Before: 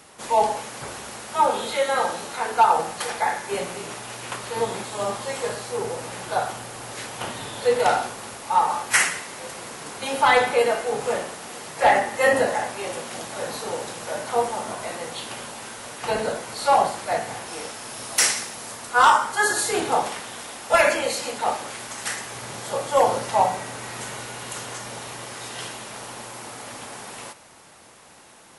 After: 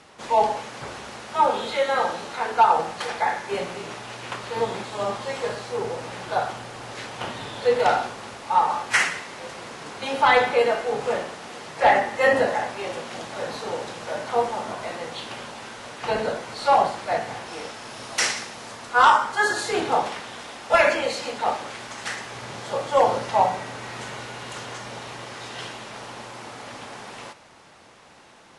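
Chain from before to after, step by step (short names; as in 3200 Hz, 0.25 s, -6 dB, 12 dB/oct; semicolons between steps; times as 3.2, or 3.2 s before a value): LPF 5300 Hz 12 dB/oct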